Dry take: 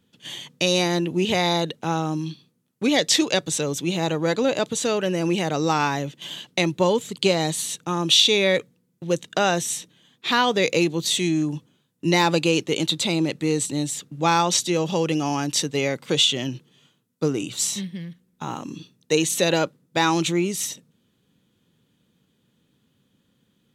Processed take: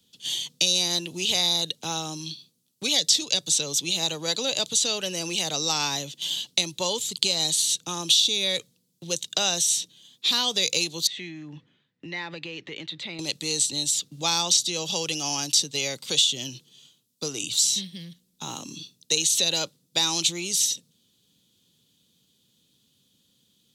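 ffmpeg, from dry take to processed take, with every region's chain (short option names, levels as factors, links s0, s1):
-filter_complex "[0:a]asettb=1/sr,asplit=3[s0][s1][s2];[s0]atrim=end=11.074[s3];[s1]atrim=start=11.07:end=13.19,asetpts=PTS-STARTPTS,afade=t=in:d=0.004:c=qsin,afade=t=out:st=2.116:d=0.004:c=qsin,acompressor=threshold=0.0251:ratio=3:attack=3.2:release=140:knee=1:detection=peak,lowpass=f=1900:t=q:w=5.3[s4];[s2]atrim=start=13.186[s5];[s3][s4]acrossfade=d=0.004:c1=hsin:c2=qsin[s6];[s6][s5]acrossfade=d=0.004:c1=qsin:c2=hsin,highshelf=f=2700:t=q:w=1.5:g=13.5,acrossover=split=170|490|6400[s7][s8][s9][s10];[s7]acompressor=threshold=0.0126:ratio=4[s11];[s8]acompressor=threshold=0.0158:ratio=4[s12];[s9]acompressor=threshold=0.158:ratio=4[s13];[s10]acompressor=threshold=0.0708:ratio=4[s14];[s11][s12][s13][s14]amix=inputs=4:normalize=0,volume=0.531"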